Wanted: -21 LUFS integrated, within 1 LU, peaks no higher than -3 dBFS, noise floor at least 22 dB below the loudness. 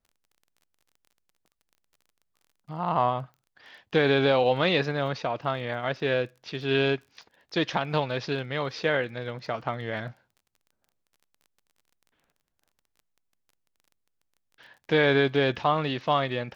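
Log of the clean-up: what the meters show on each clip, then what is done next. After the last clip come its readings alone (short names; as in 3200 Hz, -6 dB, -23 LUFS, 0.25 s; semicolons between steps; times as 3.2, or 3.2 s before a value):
ticks 25/s; loudness -26.5 LUFS; peak -9.5 dBFS; loudness target -21.0 LUFS
-> de-click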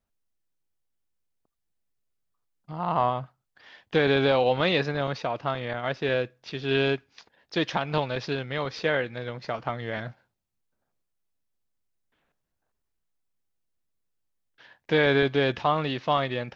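ticks 0/s; loudness -26.5 LUFS; peak -9.5 dBFS; loudness target -21.0 LUFS
-> gain +5.5 dB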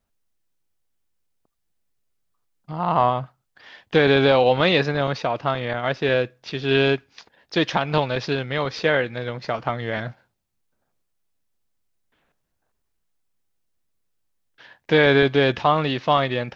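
loudness -21.0 LUFS; peak -4.0 dBFS; noise floor -74 dBFS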